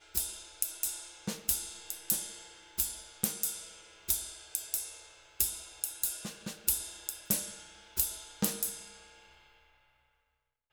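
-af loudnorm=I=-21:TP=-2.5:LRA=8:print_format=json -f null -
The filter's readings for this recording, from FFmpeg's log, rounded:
"input_i" : "-33.7",
"input_tp" : "-4.2",
"input_lra" : "3.9",
"input_thresh" : "-44.9",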